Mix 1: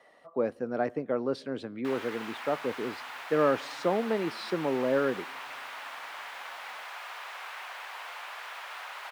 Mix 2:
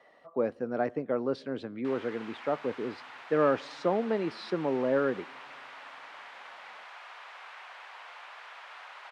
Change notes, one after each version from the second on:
background -5.0 dB; master: add air absorption 83 m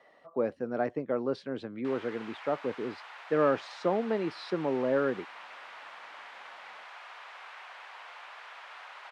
speech: send off

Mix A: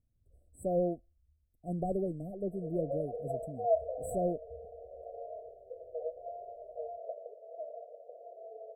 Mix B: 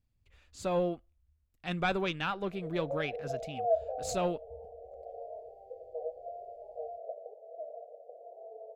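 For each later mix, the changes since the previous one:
master: remove brick-wall FIR band-stop 740–7700 Hz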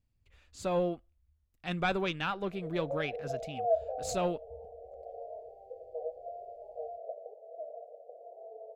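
none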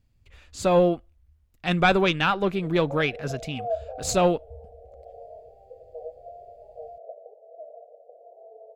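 speech +11.0 dB

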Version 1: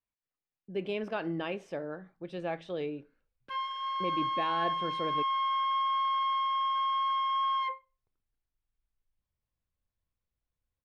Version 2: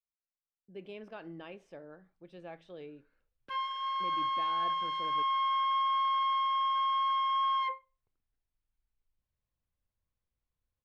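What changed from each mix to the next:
speech -11.5 dB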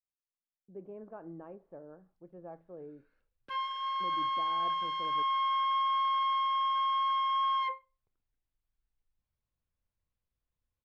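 speech: add LPF 1200 Hz 24 dB/oct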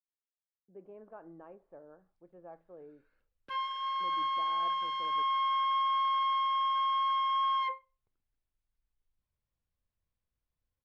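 speech: add low shelf 340 Hz -11 dB

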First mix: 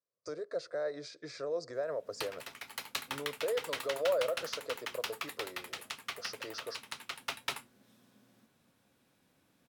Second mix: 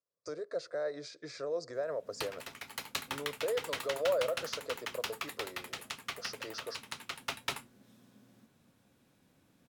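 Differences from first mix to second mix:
background: add low shelf 350 Hz +6.5 dB; master: add bell 6900 Hz +2 dB 0.32 oct

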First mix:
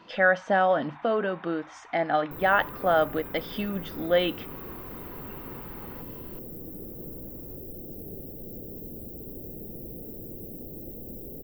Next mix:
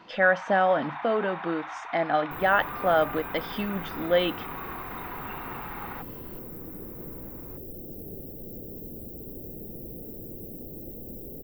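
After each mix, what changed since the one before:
first sound +11.0 dB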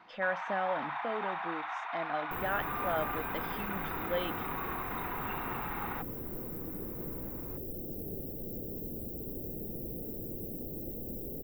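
speech -11.5 dB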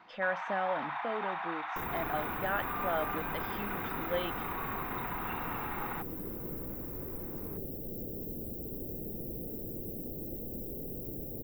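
second sound: entry -0.55 s

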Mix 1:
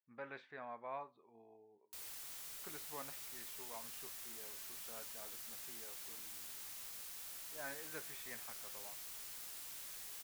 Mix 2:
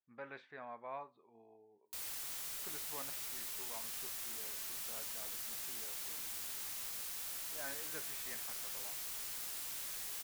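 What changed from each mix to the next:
background +6.0 dB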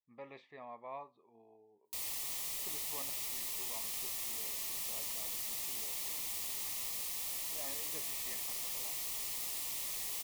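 background +4.0 dB; master: add Butterworth band-stop 1500 Hz, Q 2.7

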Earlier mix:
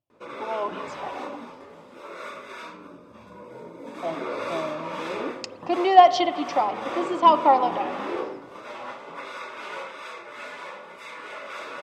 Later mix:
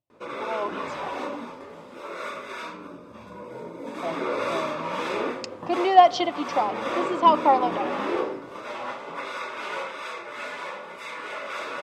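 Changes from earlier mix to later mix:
speech: send -9.0 dB; background +3.5 dB

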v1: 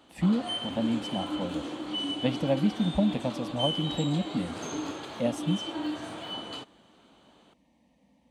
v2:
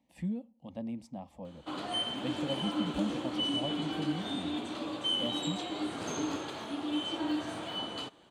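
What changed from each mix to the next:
speech -10.0 dB; background: entry +1.45 s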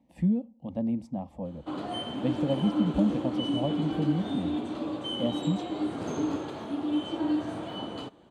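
speech +3.5 dB; master: add tilt shelf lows +6.5 dB, about 1100 Hz

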